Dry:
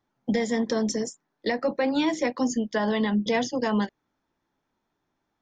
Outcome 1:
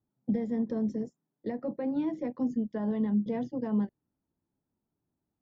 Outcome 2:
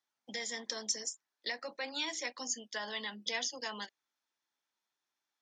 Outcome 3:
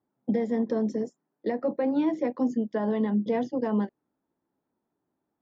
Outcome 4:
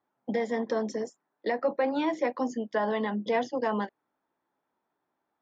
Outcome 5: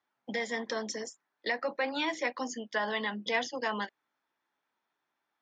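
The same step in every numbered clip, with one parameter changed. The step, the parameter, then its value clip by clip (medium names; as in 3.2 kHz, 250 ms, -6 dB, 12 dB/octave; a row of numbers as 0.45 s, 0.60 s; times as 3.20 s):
band-pass filter, frequency: 110 Hz, 6.2 kHz, 310 Hz, 790 Hz, 2 kHz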